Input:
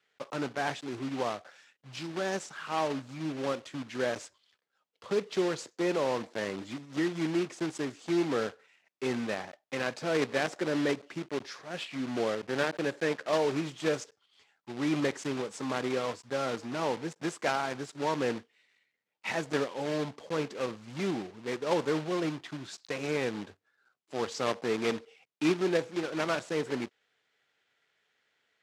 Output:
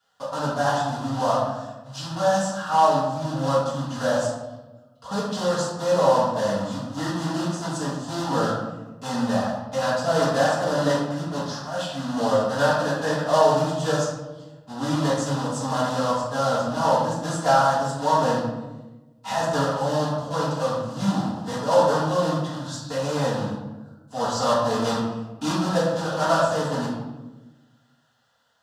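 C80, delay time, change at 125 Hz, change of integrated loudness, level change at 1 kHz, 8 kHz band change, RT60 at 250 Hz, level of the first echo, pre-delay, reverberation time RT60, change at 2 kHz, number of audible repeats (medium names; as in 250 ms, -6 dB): 3.5 dB, no echo, +13.0 dB, +9.0 dB, +14.0 dB, +10.5 dB, 1.5 s, no echo, 3 ms, 1.1 s, +5.0 dB, no echo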